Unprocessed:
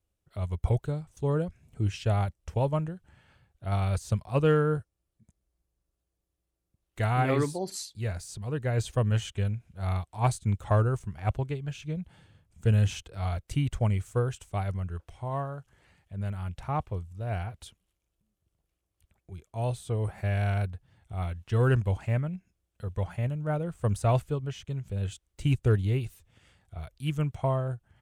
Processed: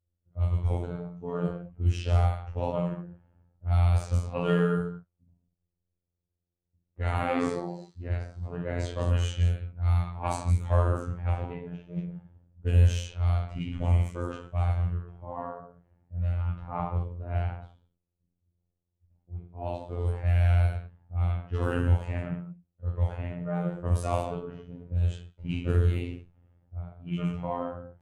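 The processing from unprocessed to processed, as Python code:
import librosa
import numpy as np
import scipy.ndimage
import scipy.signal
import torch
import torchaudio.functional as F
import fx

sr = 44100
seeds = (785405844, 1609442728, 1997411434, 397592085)

y = fx.rev_gated(x, sr, seeds[0], gate_ms=260, shape='falling', drr_db=-7.5)
y = fx.env_lowpass(y, sr, base_hz=520.0, full_db=-12.5)
y = fx.robotise(y, sr, hz=87.2)
y = y * 10.0 ** (-6.5 / 20.0)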